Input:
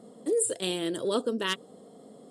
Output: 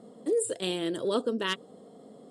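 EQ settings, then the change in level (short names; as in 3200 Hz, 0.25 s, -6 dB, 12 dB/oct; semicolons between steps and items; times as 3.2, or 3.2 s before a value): high shelf 7700 Hz -9.5 dB; 0.0 dB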